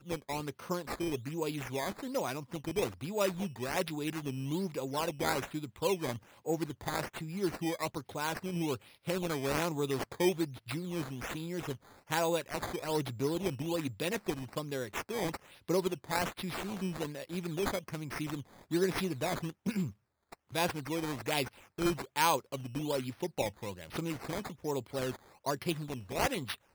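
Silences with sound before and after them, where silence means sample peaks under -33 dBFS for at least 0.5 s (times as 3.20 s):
19.88–20.55 s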